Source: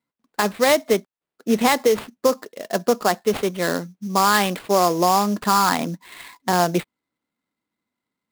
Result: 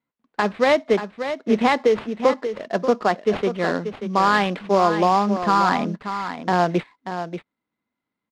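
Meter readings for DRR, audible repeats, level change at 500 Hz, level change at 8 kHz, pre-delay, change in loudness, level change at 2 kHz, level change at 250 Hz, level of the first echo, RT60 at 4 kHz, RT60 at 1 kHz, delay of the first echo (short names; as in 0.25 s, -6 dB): none, 1, +0.5 dB, -14.5 dB, none, -0.5 dB, 0.0 dB, +0.5 dB, -9.5 dB, none, none, 0.585 s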